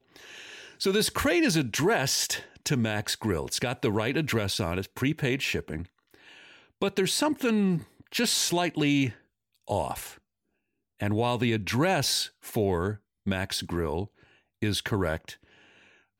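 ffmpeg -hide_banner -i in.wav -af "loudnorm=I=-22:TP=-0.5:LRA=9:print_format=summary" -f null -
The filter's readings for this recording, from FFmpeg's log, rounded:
Input Integrated:    -27.8 LUFS
Input True Peak:     -13.7 dBTP
Input LRA:             5.4 LU
Input Threshold:     -38.8 LUFS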